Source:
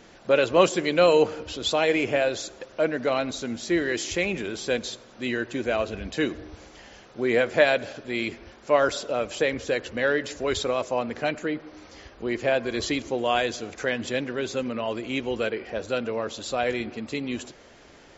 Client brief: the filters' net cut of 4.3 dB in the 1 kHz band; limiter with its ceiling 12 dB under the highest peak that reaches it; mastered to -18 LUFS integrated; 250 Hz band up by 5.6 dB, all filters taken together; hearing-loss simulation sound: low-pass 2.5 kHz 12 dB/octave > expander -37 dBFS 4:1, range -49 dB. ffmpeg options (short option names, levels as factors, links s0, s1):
-af "equalizer=f=250:t=o:g=7.5,equalizer=f=1000:t=o:g=-7,alimiter=limit=0.141:level=0:latency=1,lowpass=2500,agate=range=0.00355:threshold=0.0141:ratio=4,volume=3.35"